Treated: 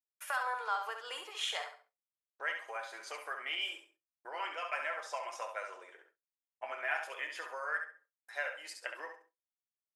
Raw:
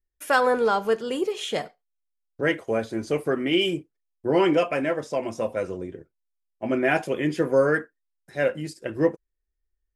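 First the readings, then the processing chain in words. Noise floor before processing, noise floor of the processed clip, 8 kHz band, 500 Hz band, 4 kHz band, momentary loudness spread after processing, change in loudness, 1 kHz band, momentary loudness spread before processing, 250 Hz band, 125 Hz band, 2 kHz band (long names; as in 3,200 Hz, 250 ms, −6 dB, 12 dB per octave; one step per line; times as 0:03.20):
−79 dBFS, below −85 dBFS, can't be measured, −23.0 dB, −8.0 dB, 11 LU, −14.0 dB, −10.0 dB, 12 LU, −39.0 dB, below −40 dB, −8.0 dB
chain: downward compressor 10 to 1, threshold −27 dBFS, peak gain reduction 13 dB
high-pass filter 920 Hz 24 dB per octave
repeating echo 68 ms, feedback 24%, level −7 dB
rectangular room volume 510 cubic metres, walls furnished, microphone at 0.43 metres
noise gate with hold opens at −55 dBFS
automatic gain control gain up to 4 dB
high-shelf EQ 2,300 Hz −9.5 dB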